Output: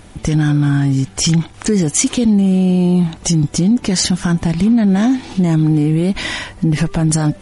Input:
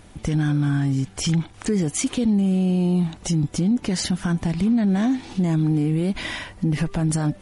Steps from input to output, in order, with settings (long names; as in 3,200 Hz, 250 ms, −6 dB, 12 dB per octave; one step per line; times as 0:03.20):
dynamic equaliser 6,300 Hz, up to +5 dB, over −45 dBFS, Q 1.2
level +7 dB